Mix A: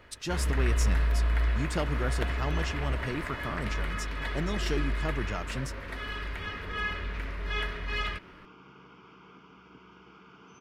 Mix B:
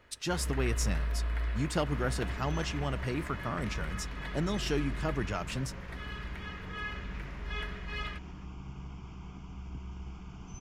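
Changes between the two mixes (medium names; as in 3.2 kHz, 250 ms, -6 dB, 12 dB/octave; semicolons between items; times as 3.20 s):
speech: send on; first sound -6.5 dB; second sound: remove cabinet simulation 310–4700 Hz, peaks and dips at 460 Hz +7 dB, 730 Hz -9 dB, 1.4 kHz +8 dB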